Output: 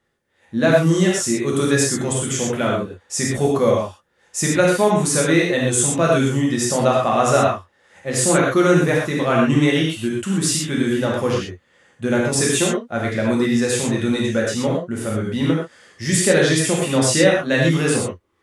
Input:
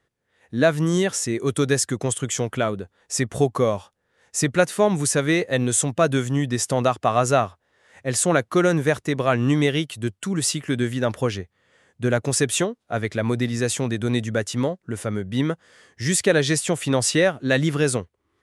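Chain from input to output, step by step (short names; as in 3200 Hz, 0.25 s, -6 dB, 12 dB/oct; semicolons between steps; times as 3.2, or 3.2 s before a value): non-linear reverb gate 0.15 s flat, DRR -4 dB; gain -1.5 dB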